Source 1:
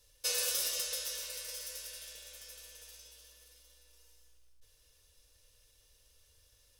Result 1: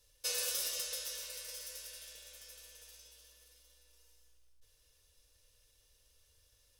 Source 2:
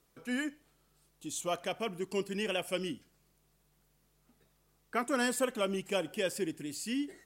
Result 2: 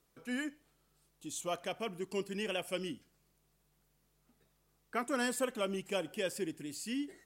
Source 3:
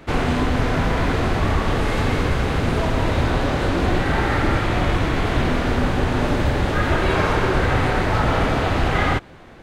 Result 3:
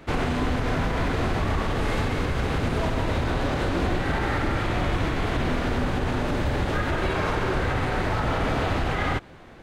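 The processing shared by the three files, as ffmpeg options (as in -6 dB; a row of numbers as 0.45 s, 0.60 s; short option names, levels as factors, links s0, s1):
-af "alimiter=limit=0.237:level=0:latency=1:release=70,volume=0.708"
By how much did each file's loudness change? -3.0 LU, -3.0 LU, -5.5 LU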